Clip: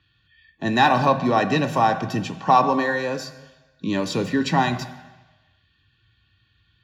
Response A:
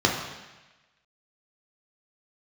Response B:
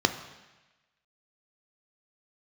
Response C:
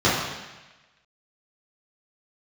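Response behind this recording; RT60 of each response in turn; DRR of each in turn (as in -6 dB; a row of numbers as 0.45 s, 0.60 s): B; 1.1 s, 1.1 s, 1.1 s; -1.0 dB, 8.0 dB, -10.0 dB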